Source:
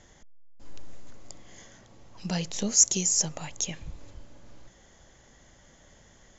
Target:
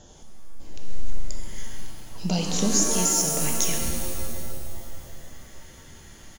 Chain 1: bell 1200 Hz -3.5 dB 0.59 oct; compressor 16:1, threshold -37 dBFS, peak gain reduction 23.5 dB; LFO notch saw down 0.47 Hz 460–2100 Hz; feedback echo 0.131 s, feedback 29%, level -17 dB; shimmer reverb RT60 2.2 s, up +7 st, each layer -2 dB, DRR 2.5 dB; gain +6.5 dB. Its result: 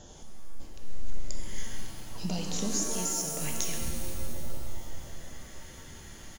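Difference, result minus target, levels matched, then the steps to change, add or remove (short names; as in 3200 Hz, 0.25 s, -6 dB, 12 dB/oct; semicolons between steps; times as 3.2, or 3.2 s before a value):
compressor: peak gain reduction +9.5 dB
change: compressor 16:1, threshold -27 dBFS, peak gain reduction 14 dB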